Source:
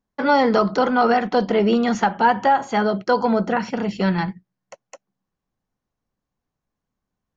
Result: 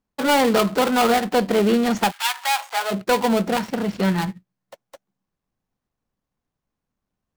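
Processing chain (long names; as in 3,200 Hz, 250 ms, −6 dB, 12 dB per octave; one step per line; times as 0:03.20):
gap after every zero crossing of 0.2 ms
0:02.10–0:02.90: high-pass filter 1,400 Hz → 600 Hz 24 dB per octave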